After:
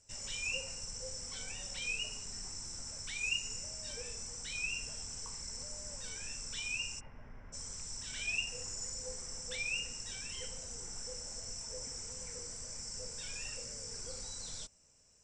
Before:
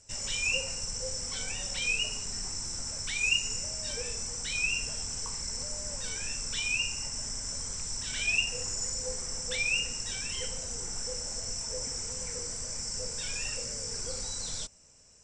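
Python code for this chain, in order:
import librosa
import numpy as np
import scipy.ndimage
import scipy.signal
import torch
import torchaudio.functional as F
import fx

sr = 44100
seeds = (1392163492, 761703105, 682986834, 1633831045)

y = fx.lowpass(x, sr, hz=2200.0, slope=24, at=(6.99, 7.52), fade=0.02)
y = y * librosa.db_to_amplitude(-8.0)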